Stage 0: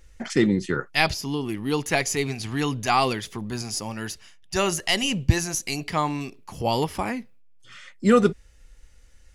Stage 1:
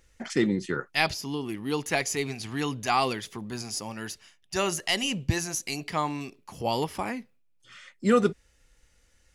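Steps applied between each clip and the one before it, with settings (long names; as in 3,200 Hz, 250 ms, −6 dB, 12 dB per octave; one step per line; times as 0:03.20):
low-shelf EQ 75 Hz −11.5 dB
level −3.5 dB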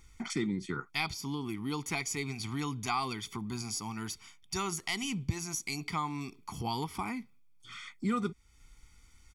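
comb filter 0.9 ms, depth 95%
downward compressor 2 to 1, threshold −38 dBFS, peak gain reduction 13.5 dB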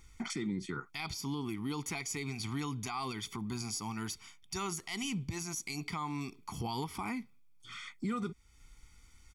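brickwall limiter −27.5 dBFS, peak gain reduction 10 dB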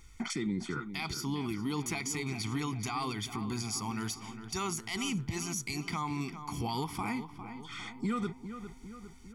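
feedback echo with a low-pass in the loop 404 ms, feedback 58%, low-pass 2,500 Hz, level −10 dB
level +2.5 dB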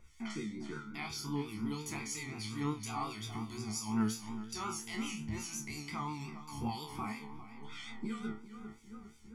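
resonators tuned to a chord D2 fifth, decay 0.42 s
pitch vibrato 5.6 Hz 56 cents
two-band tremolo in antiphase 3 Hz, depth 70%, crossover 2,200 Hz
level +10 dB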